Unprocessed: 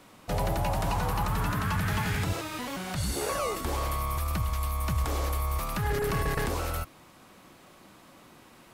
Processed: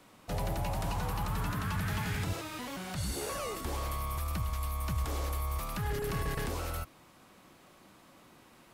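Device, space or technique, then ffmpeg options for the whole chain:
one-band saturation: -filter_complex "[0:a]acrossover=split=330|2300[a][b][c];[b]asoftclip=type=tanh:threshold=-30dB[d];[a][d][c]amix=inputs=3:normalize=0,volume=-4.5dB"

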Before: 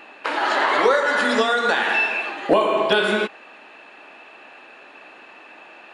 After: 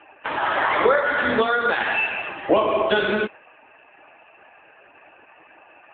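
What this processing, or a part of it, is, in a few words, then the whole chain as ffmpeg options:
mobile call with aggressive noise cancelling: -af "highpass=f=150:w=0.5412,highpass=f=150:w=1.3066,afftdn=nr=31:nf=-43" -ar 8000 -c:a libopencore_amrnb -b:a 7950

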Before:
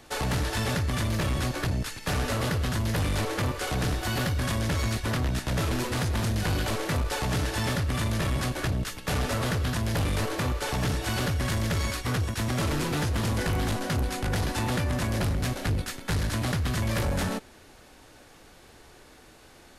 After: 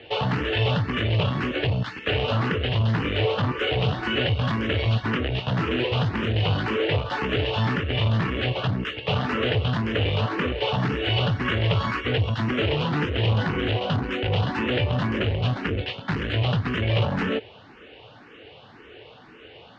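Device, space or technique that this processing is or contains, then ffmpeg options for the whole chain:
barber-pole phaser into a guitar amplifier: -filter_complex "[0:a]asplit=2[a][b];[b]afreqshift=1.9[c];[a][c]amix=inputs=2:normalize=1,asoftclip=type=tanh:threshold=-24.5dB,highpass=100,equalizer=f=110:t=q:w=4:g=6,equalizer=f=450:t=q:w=4:g=7,equalizer=f=2.9k:t=q:w=4:g=10,lowpass=f=3.5k:w=0.5412,lowpass=f=3.5k:w=1.3066,asettb=1/sr,asplit=3[d][e][f];[d]atrim=end=11.454[g];[e]atrim=start=11.45:end=12.06,asetpts=PTS-STARTPTS,afade=t=in:d=0.004:c=qsin,afade=t=out:st=0.606:d=0.004:c=qsin,equalizer=f=1.2k:t=o:w=1:g=5[h];[f]atrim=start=12.056[i];[g][h]acrossfade=d=0.004:c1=hsin:c2=qsin[j];[j][i]acrossfade=d=0.004:c1=qsin:c2=hsin,volume=7.5dB"

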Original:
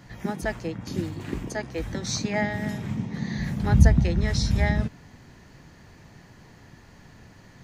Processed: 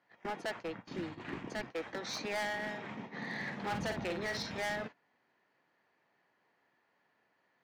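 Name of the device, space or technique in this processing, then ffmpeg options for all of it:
walkie-talkie: -filter_complex "[0:a]highpass=500,lowpass=2.8k,asoftclip=type=hard:threshold=-33.5dB,agate=range=-18dB:threshold=-45dB:ratio=16:detection=peak,asplit=3[a][b][c];[a]afade=t=out:st=0.55:d=0.02[d];[b]asubboost=boost=7:cutoff=230,afade=t=in:st=0.55:d=0.02,afade=t=out:st=1.7:d=0.02[e];[c]afade=t=in:st=1.7:d=0.02[f];[d][e][f]amix=inputs=3:normalize=0,asettb=1/sr,asplit=3[g][h][i];[g]atrim=end=3.134[j];[h]atrim=start=3.13:end=4.43,asetpts=PTS-STARTPTS,afade=t=in:d=0.004:c=qsin,afade=t=out:st=1.296:d=0.004:c=qsin,asplit=2[k][l];[l]adelay=50,volume=-6dB[m];[k][m]amix=inputs=2:normalize=0,atrim=end_sample=57330[n];[i]atrim=start=4.426[o];[j][n]acrossfade=d=0.004:c1=hsin:c2=qsin[p];[p][o]acrossfade=d=0.004:c1=qsin:c2=hsin"

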